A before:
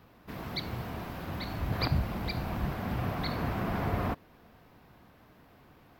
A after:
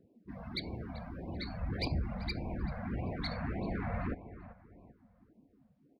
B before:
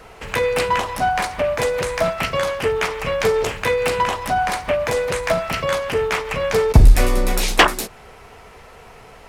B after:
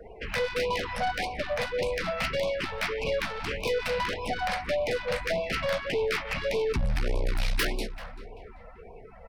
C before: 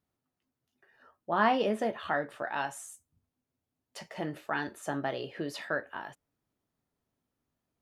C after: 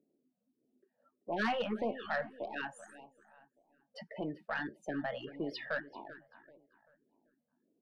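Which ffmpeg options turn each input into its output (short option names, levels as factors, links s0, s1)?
-filter_complex "[0:a]lowpass=8000,afftdn=nr=27:nf=-42,equalizer=f=125:t=o:w=1:g=-7,equalizer=f=1000:t=o:w=1:g=-8,equalizer=f=4000:t=o:w=1:g=-4,acrossover=split=220|500|3200[s0][s1][s2][s3];[s1]acompressor=mode=upward:threshold=0.00631:ratio=2.5[s4];[s2]crystalizer=i=2.5:c=0[s5];[s3]acompressor=threshold=0.00562:ratio=8[s6];[s0][s4][s5][s6]amix=inputs=4:normalize=0,aeval=exprs='(tanh(15.8*val(0)+0.15)-tanh(0.15))/15.8':c=same,aexciter=amount=1.7:drive=1.8:freq=4000,asplit=2[s7][s8];[s8]adelay=388,lowpass=f=2400:p=1,volume=0.2,asplit=2[s9][s10];[s10]adelay=388,lowpass=f=2400:p=1,volume=0.37,asplit=2[s11][s12];[s12]adelay=388,lowpass=f=2400:p=1,volume=0.37,asplit=2[s13][s14];[s14]adelay=388,lowpass=f=2400:p=1,volume=0.37[s15];[s7][s9][s11][s13][s15]amix=inputs=5:normalize=0,afftfilt=real='re*(1-between(b*sr/1024,310*pow(1600/310,0.5+0.5*sin(2*PI*1.7*pts/sr))/1.41,310*pow(1600/310,0.5+0.5*sin(2*PI*1.7*pts/sr))*1.41))':imag='im*(1-between(b*sr/1024,310*pow(1600/310,0.5+0.5*sin(2*PI*1.7*pts/sr))/1.41,310*pow(1600/310,0.5+0.5*sin(2*PI*1.7*pts/sr))*1.41))':win_size=1024:overlap=0.75"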